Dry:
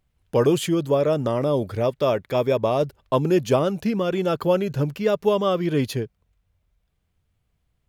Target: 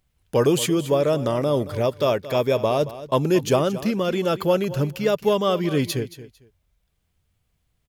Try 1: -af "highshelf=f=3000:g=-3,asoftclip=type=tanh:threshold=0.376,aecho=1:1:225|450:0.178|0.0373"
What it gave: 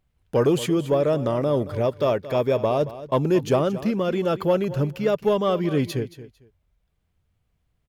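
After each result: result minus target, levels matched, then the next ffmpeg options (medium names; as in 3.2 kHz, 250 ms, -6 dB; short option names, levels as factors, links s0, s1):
saturation: distortion +12 dB; 8 kHz band -7.5 dB
-af "highshelf=f=3000:g=-3,asoftclip=type=tanh:threshold=0.841,aecho=1:1:225|450:0.178|0.0373"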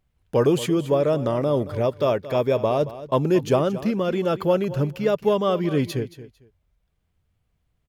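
8 kHz band -8.0 dB
-af "highshelf=f=3000:g=6.5,asoftclip=type=tanh:threshold=0.841,aecho=1:1:225|450:0.178|0.0373"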